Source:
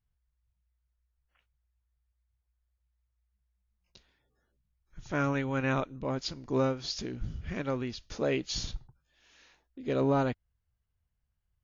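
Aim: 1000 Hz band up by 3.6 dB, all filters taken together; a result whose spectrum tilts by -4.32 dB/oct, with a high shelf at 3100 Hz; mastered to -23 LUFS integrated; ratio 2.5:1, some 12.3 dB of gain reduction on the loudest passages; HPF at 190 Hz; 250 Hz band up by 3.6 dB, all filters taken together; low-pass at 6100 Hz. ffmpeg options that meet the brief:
-af "highpass=190,lowpass=6.1k,equalizer=f=250:t=o:g=5,equalizer=f=1k:t=o:g=5,highshelf=f=3.1k:g=-4.5,acompressor=threshold=-39dB:ratio=2.5,volume=17.5dB"

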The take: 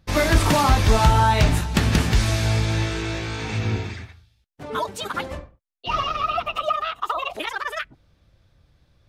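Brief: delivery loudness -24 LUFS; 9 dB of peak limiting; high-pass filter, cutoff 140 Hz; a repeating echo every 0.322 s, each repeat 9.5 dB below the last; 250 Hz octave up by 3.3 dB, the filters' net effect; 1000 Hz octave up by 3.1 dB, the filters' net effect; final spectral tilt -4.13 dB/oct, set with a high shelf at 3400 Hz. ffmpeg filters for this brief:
-af "highpass=140,equalizer=f=250:t=o:g=5,equalizer=f=1k:t=o:g=4,highshelf=f=3.4k:g=-5,alimiter=limit=-12.5dB:level=0:latency=1,aecho=1:1:322|644|966|1288:0.335|0.111|0.0365|0.012"

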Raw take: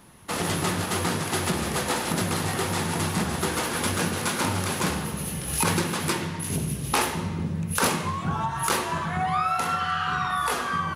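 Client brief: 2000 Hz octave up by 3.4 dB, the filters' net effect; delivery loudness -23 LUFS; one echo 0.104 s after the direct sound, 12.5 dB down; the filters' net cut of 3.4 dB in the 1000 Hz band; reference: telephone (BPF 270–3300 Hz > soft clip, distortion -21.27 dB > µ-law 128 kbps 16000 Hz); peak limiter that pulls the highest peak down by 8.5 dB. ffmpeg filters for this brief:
-af "equalizer=f=1k:t=o:g=-7,equalizer=f=2k:t=o:g=7.5,alimiter=limit=-17dB:level=0:latency=1,highpass=270,lowpass=3.3k,aecho=1:1:104:0.237,asoftclip=threshold=-20.5dB,volume=7.5dB" -ar 16000 -c:a pcm_mulaw

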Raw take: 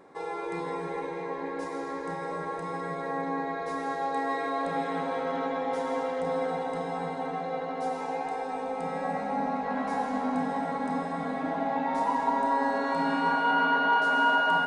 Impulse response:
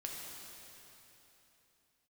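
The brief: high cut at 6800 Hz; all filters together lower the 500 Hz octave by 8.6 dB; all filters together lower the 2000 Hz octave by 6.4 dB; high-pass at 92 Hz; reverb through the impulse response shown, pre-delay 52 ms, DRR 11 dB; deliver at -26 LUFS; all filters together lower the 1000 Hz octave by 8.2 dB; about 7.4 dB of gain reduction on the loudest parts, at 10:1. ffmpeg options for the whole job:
-filter_complex "[0:a]highpass=92,lowpass=6.8k,equalizer=f=500:t=o:g=-8,equalizer=f=1k:t=o:g=-6.5,equalizer=f=2k:t=o:g=-5,acompressor=threshold=-35dB:ratio=10,asplit=2[a][b];[1:a]atrim=start_sample=2205,adelay=52[c];[b][c]afir=irnorm=-1:irlink=0,volume=-10.5dB[d];[a][d]amix=inputs=2:normalize=0,volume=14dB"

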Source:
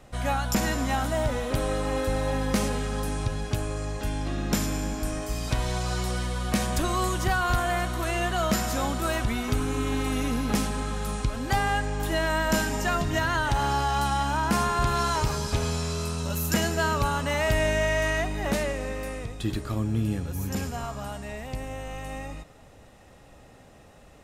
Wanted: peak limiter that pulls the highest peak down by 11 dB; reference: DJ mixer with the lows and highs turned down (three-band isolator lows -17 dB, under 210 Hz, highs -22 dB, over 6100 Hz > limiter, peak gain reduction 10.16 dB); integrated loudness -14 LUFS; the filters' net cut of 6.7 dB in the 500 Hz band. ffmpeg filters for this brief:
-filter_complex "[0:a]equalizer=f=500:t=o:g=-9,alimiter=level_in=0.5dB:limit=-24dB:level=0:latency=1,volume=-0.5dB,acrossover=split=210 6100:gain=0.141 1 0.0794[a][b][c];[a][b][c]amix=inputs=3:normalize=0,volume=27dB,alimiter=limit=-5.5dB:level=0:latency=1"

